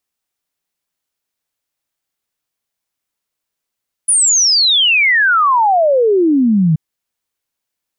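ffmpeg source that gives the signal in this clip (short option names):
-f lavfi -i "aevalsrc='0.376*clip(min(t,2.68-t)/0.01,0,1)*sin(2*PI*10000*2.68/log(150/10000)*(exp(log(150/10000)*t/2.68)-1))':d=2.68:s=44100"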